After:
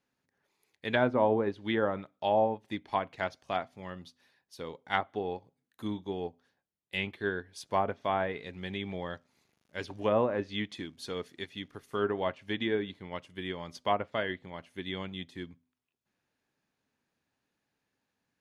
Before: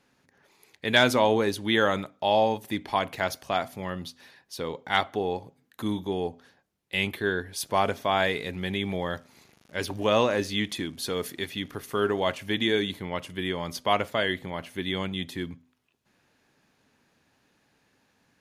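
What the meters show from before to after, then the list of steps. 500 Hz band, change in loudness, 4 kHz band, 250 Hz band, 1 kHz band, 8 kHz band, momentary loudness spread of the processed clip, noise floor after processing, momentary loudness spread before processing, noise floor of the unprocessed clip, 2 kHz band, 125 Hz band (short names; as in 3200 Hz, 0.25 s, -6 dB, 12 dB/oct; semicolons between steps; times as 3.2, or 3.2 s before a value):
-4.5 dB, -5.5 dB, -11.0 dB, -5.5 dB, -5.0 dB, -16.0 dB, 15 LU, -84 dBFS, 12 LU, -69 dBFS, -8.0 dB, -6.0 dB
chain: treble ducked by the level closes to 1100 Hz, closed at -18.5 dBFS; upward expander 1.5:1, over -45 dBFS; gain -2.5 dB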